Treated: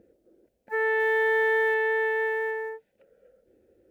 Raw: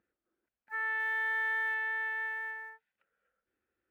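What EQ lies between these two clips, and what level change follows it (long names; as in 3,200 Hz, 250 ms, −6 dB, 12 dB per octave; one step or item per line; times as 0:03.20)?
low shelf with overshoot 780 Hz +13.5 dB, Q 3
+8.5 dB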